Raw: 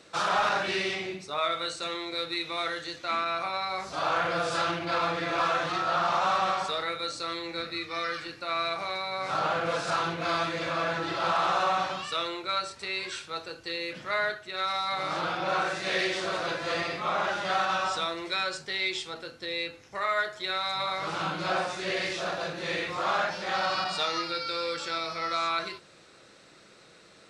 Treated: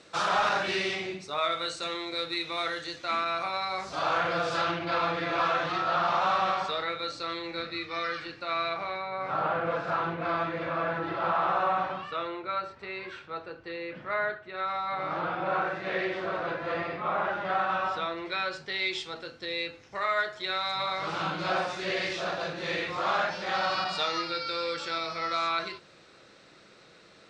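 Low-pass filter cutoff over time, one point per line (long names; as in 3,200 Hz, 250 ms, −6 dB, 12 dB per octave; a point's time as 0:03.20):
0:03.71 9,100 Hz
0:04.74 4,500 Hz
0:08.53 4,500 Hz
0:09.12 1,900 Hz
0:17.57 1,900 Hz
0:18.45 3,300 Hz
0:18.98 5,900 Hz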